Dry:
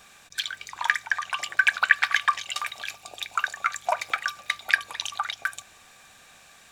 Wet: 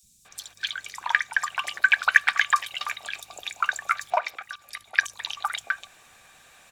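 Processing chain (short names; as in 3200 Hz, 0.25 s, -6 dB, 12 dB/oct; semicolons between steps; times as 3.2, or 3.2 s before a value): 4.1–4.97 level quantiser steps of 18 dB; three bands offset in time highs, lows, mids 30/250 ms, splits 230/5000 Hz; harmonic-percussive split percussive +4 dB; gain -2.5 dB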